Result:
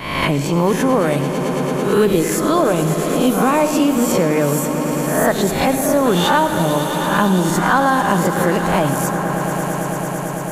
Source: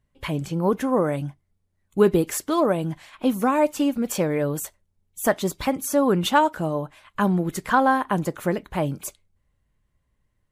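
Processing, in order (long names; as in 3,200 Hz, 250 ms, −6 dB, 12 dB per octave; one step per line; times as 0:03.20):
peak hold with a rise ahead of every peak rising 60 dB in 0.49 s
in parallel at +1.5 dB: brickwall limiter −14 dBFS, peak gain reduction 10 dB
on the sum: tape wow and flutter 46 cents
echo that builds up and dies away 111 ms, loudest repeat 5, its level −17 dB
on a send at −10.5 dB: convolution reverb RT60 0.85 s, pre-delay 69 ms
on the sum: multiband upward and downward compressor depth 70%
level −1 dB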